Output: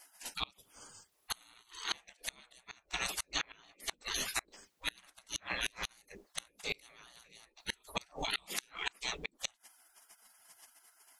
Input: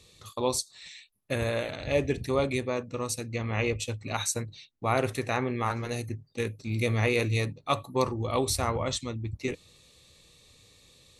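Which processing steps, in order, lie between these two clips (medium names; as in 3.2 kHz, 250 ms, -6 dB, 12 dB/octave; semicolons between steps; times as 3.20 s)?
spectral gate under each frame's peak -25 dB weak; inverted gate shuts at -35 dBFS, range -31 dB; trim +15 dB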